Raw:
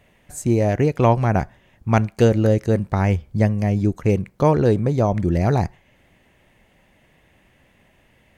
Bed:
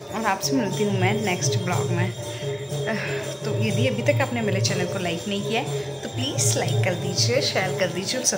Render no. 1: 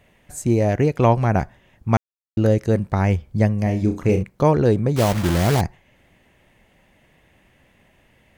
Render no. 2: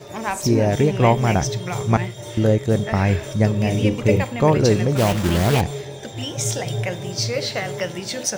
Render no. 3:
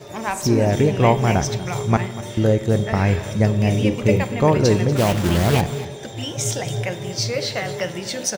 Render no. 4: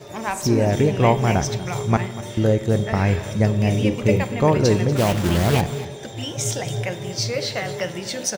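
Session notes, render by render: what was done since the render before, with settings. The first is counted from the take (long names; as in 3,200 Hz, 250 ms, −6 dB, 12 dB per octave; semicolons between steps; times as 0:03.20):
0:01.97–0:02.37: silence; 0:03.63–0:04.23: flutter between parallel walls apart 5.6 metres, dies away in 0.3 s; 0:04.96–0:05.62: one scale factor per block 3 bits
mix in bed −2.5 dB
single-tap delay 240 ms −16.5 dB; spring reverb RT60 1.3 s, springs 48 ms, chirp 70 ms, DRR 15 dB
level −1 dB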